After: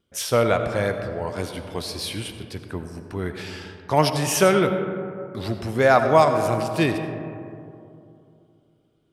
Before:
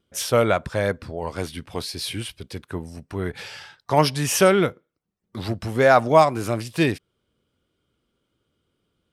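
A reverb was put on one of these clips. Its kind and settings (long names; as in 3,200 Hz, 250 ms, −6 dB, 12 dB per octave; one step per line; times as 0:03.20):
comb and all-pass reverb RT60 2.8 s, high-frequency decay 0.3×, pre-delay 40 ms, DRR 7 dB
level −1 dB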